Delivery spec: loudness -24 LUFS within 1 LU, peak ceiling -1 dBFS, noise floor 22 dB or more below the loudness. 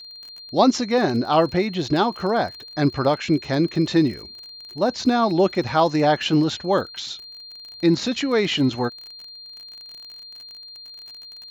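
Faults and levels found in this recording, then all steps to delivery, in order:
ticks 37/s; steady tone 4200 Hz; tone level -38 dBFS; loudness -21.0 LUFS; peak -4.5 dBFS; loudness target -24.0 LUFS
-> de-click; notch 4200 Hz, Q 30; gain -3 dB

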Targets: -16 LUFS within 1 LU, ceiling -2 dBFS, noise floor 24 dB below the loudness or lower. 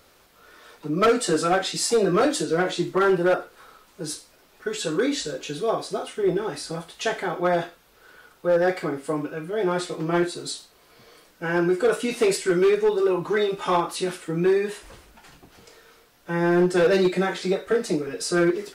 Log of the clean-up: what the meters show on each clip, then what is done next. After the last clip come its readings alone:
clipped 1.3%; flat tops at -14.0 dBFS; loudness -23.5 LUFS; peak -14.0 dBFS; loudness target -16.0 LUFS
-> clip repair -14 dBFS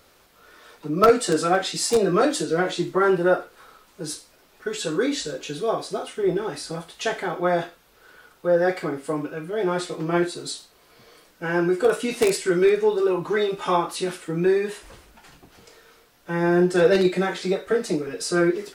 clipped 0.0%; loudness -23.0 LUFS; peak -5.0 dBFS; loudness target -16.0 LUFS
-> gain +7 dB; limiter -2 dBFS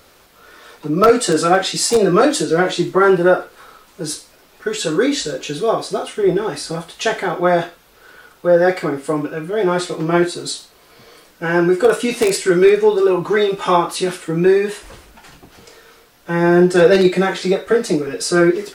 loudness -16.5 LUFS; peak -2.0 dBFS; noise floor -50 dBFS

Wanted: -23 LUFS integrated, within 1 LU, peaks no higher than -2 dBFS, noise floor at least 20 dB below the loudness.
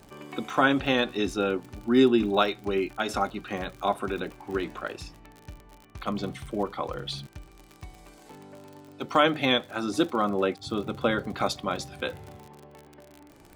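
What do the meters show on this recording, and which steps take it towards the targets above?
ticks 52/s; loudness -27.5 LUFS; peak -7.0 dBFS; loudness target -23.0 LUFS
-> de-click; gain +4.5 dB

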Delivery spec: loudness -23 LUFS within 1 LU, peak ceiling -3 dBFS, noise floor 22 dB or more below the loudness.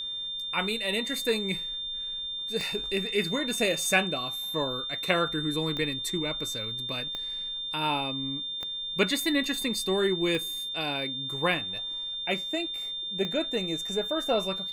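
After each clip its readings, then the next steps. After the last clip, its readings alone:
clicks 6; steady tone 3600 Hz; tone level -32 dBFS; loudness -28.5 LUFS; peak -9.0 dBFS; loudness target -23.0 LUFS
-> de-click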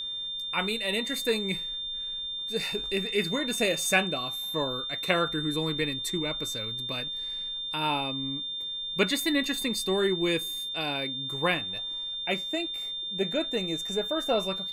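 clicks 0; steady tone 3600 Hz; tone level -32 dBFS
-> notch 3600 Hz, Q 30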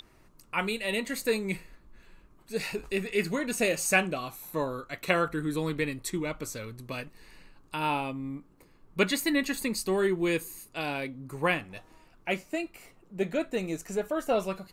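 steady tone none; loudness -30.5 LUFS; peak -9.0 dBFS; loudness target -23.0 LUFS
-> gain +7.5 dB; limiter -3 dBFS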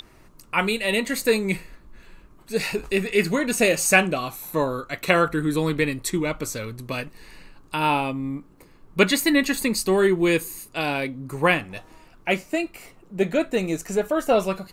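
loudness -23.0 LUFS; peak -3.0 dBFS; noise floor -52 dBFS

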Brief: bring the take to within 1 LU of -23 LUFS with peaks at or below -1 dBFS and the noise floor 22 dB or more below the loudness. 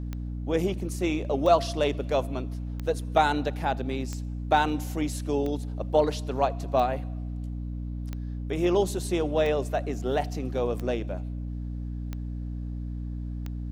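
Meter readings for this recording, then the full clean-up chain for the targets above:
clicks 11; hum 60 Hz; harmonics up to 300 Hz; hum level -31 dBFS; loudness -28.5 LUFS; peak -9.0 dBFS; loudness target -23.0 LUFS
-> de-click; notches 60/120/180/240/300 Hz; gain +5.5 dB

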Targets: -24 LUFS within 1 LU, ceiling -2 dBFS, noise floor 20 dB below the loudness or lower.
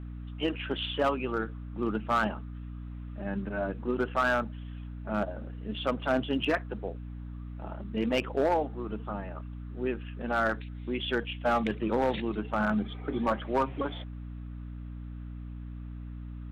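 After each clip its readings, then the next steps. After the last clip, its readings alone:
clipped 0.6%; flat tops at -19.5 dBFS; hum 60 Hz; harmonics up to 300 Hz; hum level -38 dBFS; loudness -31.5 LUFS; peak -19.5 dBFS; loudness target -24.0 LUFS
-> clip repair -19.5 dBFS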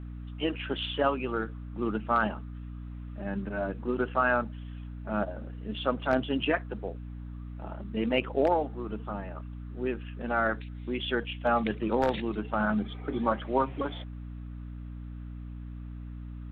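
clipped 0.0%; hum 60 Hz; harmonics up to 300 Hz; hum level -38 dBFS
-> notches 60/120/180/240/300 Hz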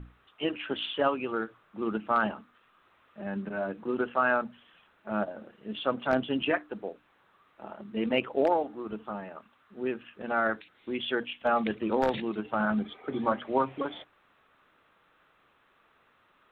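hum none; loudness -31.0 LUFS; peak -10.5 dBFS; loudness target -24.0 LUFS
-> gain +7 dB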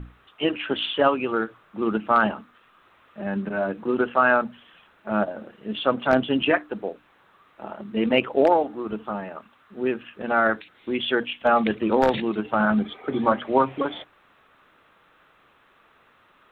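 loudness -24.0 LUFS; peak -3.5 dBFS; noise floor -59 dBFS

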